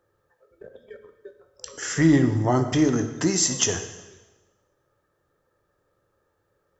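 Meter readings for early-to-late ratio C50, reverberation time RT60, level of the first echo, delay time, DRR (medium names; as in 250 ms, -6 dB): 9.5 dB, 1.2 s, no echo, no echo, 7.5 dB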